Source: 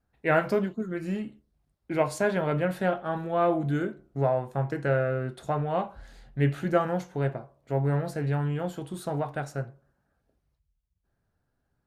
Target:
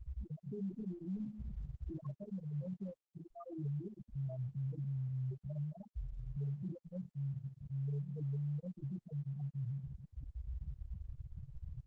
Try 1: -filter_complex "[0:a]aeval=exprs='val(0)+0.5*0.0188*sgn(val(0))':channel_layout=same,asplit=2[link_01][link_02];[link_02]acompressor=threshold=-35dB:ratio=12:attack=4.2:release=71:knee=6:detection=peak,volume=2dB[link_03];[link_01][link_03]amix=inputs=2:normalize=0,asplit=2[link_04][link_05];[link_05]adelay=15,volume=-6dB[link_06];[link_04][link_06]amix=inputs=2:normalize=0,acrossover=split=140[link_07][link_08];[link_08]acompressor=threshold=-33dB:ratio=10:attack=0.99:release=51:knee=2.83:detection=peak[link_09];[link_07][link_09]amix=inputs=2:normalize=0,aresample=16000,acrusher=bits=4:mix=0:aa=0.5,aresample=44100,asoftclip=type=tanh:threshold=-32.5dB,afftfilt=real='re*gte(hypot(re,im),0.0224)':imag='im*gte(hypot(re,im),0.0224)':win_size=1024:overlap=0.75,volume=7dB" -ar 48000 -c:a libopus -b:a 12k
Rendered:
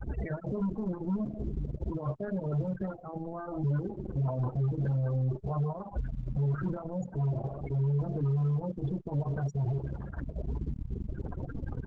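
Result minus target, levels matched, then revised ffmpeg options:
soft clipping: distortion −5 dB
-filter_complex "[0:a]aeval=exprs='val(0)+0.5*0.0188*sgn(val(0))':channel_layout=same,asplit=2[link_01][link_02];[link_02]acompressor=threshold=-35dB:ratio=12:attack=4.2:release=71:knee=6:detection=peak,volume=2dB[link_03];[link_01][link_03]amix=inputs=2:normalize=0,asplit=2[link_04][link_05];[link_05]adelay=15,volume=-6dB[link_06];[link_04][link_06]amix=inputs=2:normalize=0,acrossover=split=140[link_07][link_08];[link_08]acompressor=threshold=-33dB:ratio=10:attack=0.99:release=51:knee=2.83:detection=peak[link_09];[link_07][link_09]amix=inputs=2:normalize=0,aresample=16000,acrusher=bits=4:mix=0:aa=0.5,aresample=44100,asoftclip=type=tanh:threshold=-43dB,afftfilt=real='re*gte(hypot(re,im),0.0224)':imag='im*gte(hypot(re,im),0.0224)':win_size=1024:overlap=0.75,volume=7dB" -ar 48000 -c:a libopus -b:a 12k

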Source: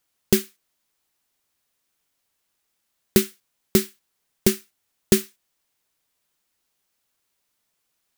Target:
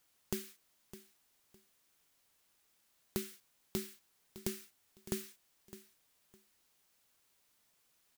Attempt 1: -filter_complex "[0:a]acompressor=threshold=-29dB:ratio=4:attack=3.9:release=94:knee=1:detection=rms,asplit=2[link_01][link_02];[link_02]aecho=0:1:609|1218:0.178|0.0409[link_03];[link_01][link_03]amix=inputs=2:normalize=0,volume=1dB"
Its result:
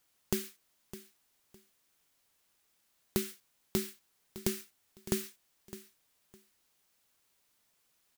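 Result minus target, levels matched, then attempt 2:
downward compressor: peak gain reduction −6 dB
-filter_complex "[0:a]acompressor=threshold=-37dB:ratio=4:attack=3.9:release=94:knee=1:detection=rms,asplit=2[link_01][link_02];[link_02]aecho=0:1:609|1218:0.178|0.0409[link_03];[link_01][link_03]amix=inputs=2:normalize=0,volume=1dB"

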